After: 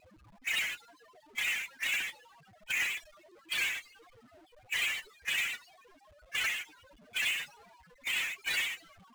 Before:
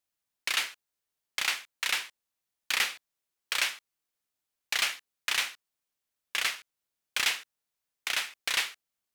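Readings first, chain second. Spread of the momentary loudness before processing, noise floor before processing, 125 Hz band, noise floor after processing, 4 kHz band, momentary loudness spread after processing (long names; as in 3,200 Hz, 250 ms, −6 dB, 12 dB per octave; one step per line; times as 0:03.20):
10 LU, below −85 dBFS, can't be measured, −62 dBFS, −5.0 dB, 9 LU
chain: spectral peaks only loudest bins 16
low-pass that shuts in the quiet parts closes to 580 Hz, open at −34.5 dBFS
power curve on the samples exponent 0.35
level −4.5 dB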